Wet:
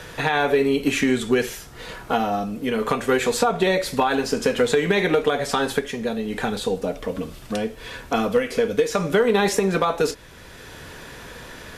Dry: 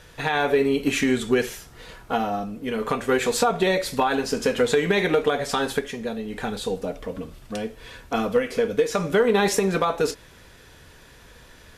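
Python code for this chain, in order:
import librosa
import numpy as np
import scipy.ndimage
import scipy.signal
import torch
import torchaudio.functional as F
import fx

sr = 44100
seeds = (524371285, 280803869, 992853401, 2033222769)

y = fx.band_squash(x, sr, depth_pct=40)
y = y * librosa.db_to_amplitude(1.5)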